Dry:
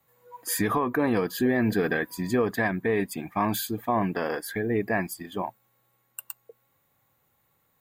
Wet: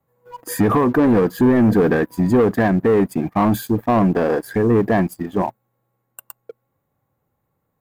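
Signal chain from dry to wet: tilt shelf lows +7.5 dB, about 1.3 kHz; waveshaping leveller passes 2; peaking EQ 3.4 kHz -4 dB 1.5 oct

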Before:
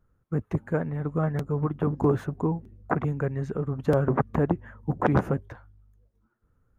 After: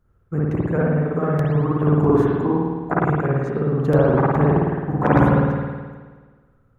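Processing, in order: spring tank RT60 1.5 s, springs 53 ms, chirp 70 ms, DRR -6 dB; trim +1.5 dB

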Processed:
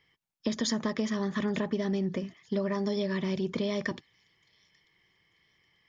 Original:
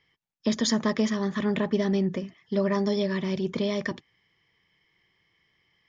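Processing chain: compression, threshold -26 dBFS, peak gain reduction 7 dB; on a send: feedback echo behind a high-pass 891 ms, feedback 32%, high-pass 4.2 kHz, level -21 dB

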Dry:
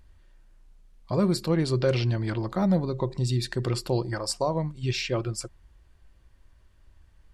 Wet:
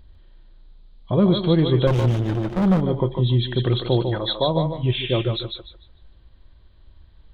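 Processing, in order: knee-point frequency compression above 3 kHz 4:1; peaking EQ 2 kHz -7 dB 2.5 oct; thinning echo 149 ms, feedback 27%, high-pass 490 Hz, level -3.5 dB; 1.87–2.81 s: sliding maximum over 33 samples; trim +7 dB

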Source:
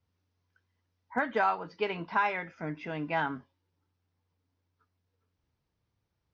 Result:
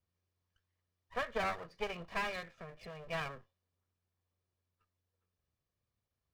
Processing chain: comb filter that takes the minimum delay 1.7 ms; 2.51–3.06 s: compression 2.5:1, threshold -40 dBFS, peak gain reduction 6 dB; trim -6.5 dB

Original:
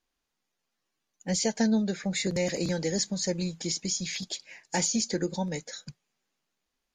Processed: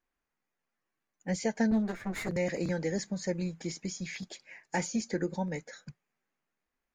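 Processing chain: 1.71–2.29 s: comb filter that takes the minimum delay 9.3 ms; resonant high shelf 2.7 kHz -8 dB, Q 1.5; trim -2.5 dB

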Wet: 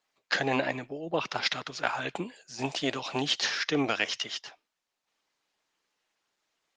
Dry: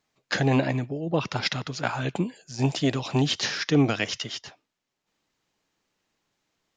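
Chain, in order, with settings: frequency weighting A; Opus 24 kbps 48 kHz

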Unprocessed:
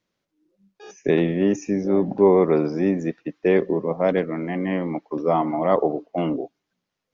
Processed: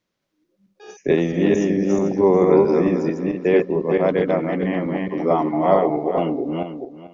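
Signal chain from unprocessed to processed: backward echo that repeats 221 ms, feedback 42%, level -1.5 dB

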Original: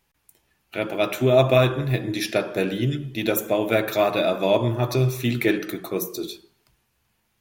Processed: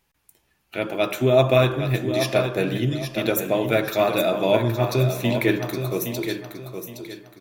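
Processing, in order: feedback delay 817 ms, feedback 30%, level -8 dB

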